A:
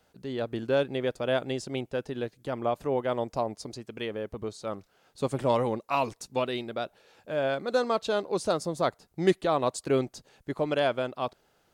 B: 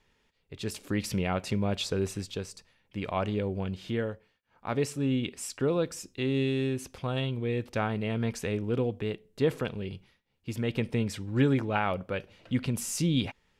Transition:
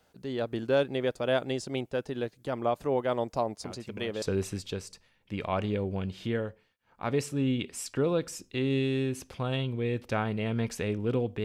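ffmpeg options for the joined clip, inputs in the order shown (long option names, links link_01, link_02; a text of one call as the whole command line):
ffmpeg -i cue0.wav -i cue1.wav -filter_complex "[1:a]asplit=2[link_01][link_02];[0:a]apad=whole_dur=11.44,atrim=end=11.44,atrim=end=4.222[link_03];[link_02]atrim=start=1.858:end=9.08[link_04];[link_01]atrim=start=1.28:end=1.86,asetpts=PTS-STARTPTS,volume=-15.5dB,afade=type=in:duration=0.004:curve=hsin,afade=type=out:start_time=0.576:duration=0.004:curve=hsin,adelay=3640[link_05];[link_03][link_04]acrossfade=duration=0.004:curve1=hsin:curve2=hsin[link_06];[link_06][link_05]amix=inputs=2:normalize=0" out.wav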